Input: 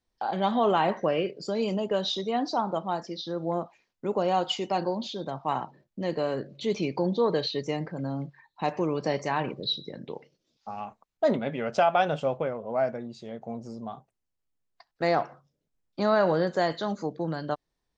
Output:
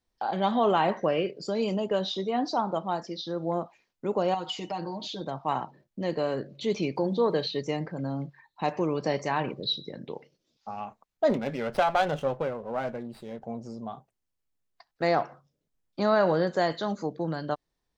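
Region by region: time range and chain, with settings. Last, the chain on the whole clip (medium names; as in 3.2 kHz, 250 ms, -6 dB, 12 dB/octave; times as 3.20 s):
1.99–2.44 s: treble shelf 4.2 kHz -8 dB + doubling 16 ms -11 dB
4.34–5.21 s: comb 6.4 ms, depth 86% + compression 2.5:1, threshold -33 dBFS
6.96–7.56 s: hum notches 60/120/180 Hz + word length cut 12-bit, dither triangular + distance through air 52 m
11.30–13.45 s: band-stop 660 Hz, Q 11 + sliding maximum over 5 samples
whole clip: none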